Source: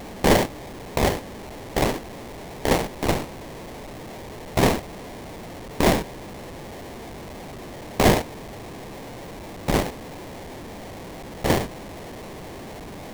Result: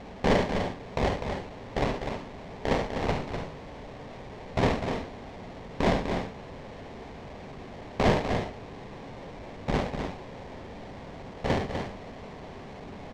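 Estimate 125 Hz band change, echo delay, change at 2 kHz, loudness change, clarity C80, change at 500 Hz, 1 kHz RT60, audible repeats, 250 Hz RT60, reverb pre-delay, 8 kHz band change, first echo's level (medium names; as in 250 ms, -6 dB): -4.0 dB, 51 ms, -5.5 dB, -6.0 dB, no reverb, -4.5 dB, no reverb, 3, no reverb, no reverb, -16.0 dB, -10.5 dB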